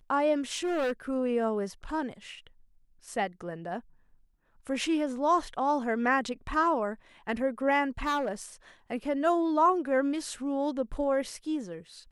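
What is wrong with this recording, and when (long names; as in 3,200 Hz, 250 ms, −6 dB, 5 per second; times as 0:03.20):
0:00.53–0:00.92: clipping −26 dBFS
0:08.04–0:08.42: clipping −25 dBFS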